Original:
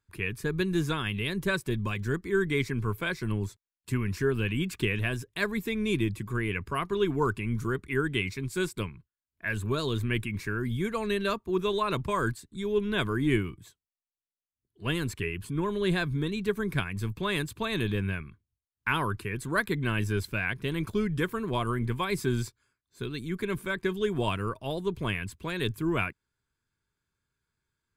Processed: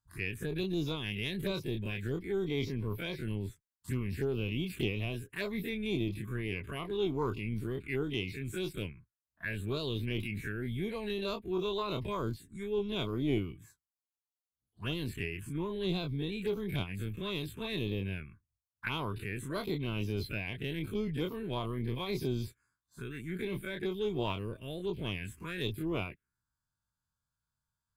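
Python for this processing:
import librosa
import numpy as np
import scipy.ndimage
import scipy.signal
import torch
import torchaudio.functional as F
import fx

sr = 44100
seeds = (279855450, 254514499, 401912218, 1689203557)

y = fx.spec_dilate(x, sr, span_ms=60)
y = fx.env_phaser(y, sr, low_hz=380.0, high_hz=1700.0, full_db=-21.5)
y = fx.cheby_harmonics(y, sr, harmonics=(2,), levels_db=(-16,), full_scale_db=-11.5)
y = y * librosa.db_to_amplitude(-7.5)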